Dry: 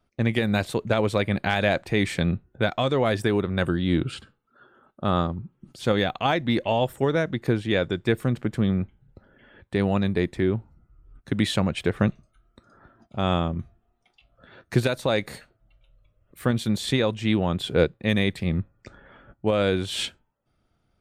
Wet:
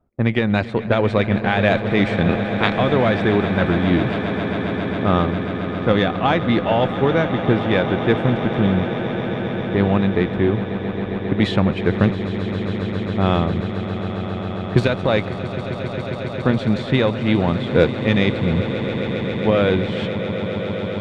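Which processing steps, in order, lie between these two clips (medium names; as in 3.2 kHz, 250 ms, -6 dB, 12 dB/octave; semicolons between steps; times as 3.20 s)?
2.28–2.77 s: spectral peaks clipped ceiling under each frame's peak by 24 dB; Chebyshev shaper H 8 -31 dB, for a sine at -5 dBFS; level-controlled noise filter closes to 900 Hz, open at -12 dBFS; on a send: echo with a slow build-up 135 ms, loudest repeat 8, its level -14.5 dB; on the sum: trim +5 dB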